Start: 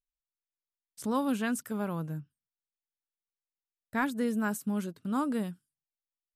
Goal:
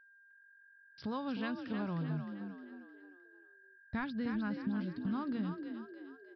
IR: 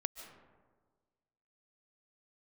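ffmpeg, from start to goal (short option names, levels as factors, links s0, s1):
-filter_complex "[0:a]aemphasis=mode=production:type=cd,agate=range=0.112:threshold=0.00112:ratio=16:detection=peak,asubboost=boost=8:cutoff=140,acompressor=threshold=0.0158:ratio=4,aeval=exprs='val(0)+0.001*sin(2*PI*1600*n/s)':c=same,asplit=6[s0][s1][s2][s3][s4][s5];[s1]adelay=308,afreqshift=46,volume=0.447[s6];[s2]adelay=616,afreqshift=92,volume=0.197[s7];[s3]adelay=924,afreqshift=138,volume=0.0861[s8];[s4]adelay=1232,afreqshift=184,volume=0.038[s9];[s5]adelay=1540,afreqshift=230,volume=0.0168[s10];[s0][s6][s7][s8][s9][s10]amix=inputs=6:normalize=0,aresample=11025,aresample=44100"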